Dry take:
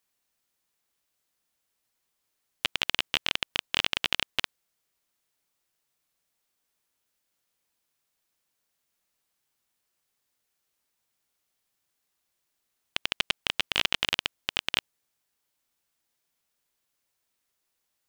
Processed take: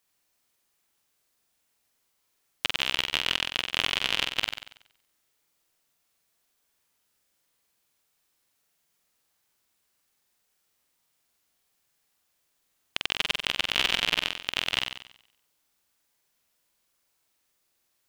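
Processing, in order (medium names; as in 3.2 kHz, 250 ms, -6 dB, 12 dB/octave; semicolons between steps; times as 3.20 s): peak limiter -9 dBFS, peak gain reduction 3.5 dB; on a send: flutter echo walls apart 8 m, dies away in 0.68 s; on the sum: trim +3 dB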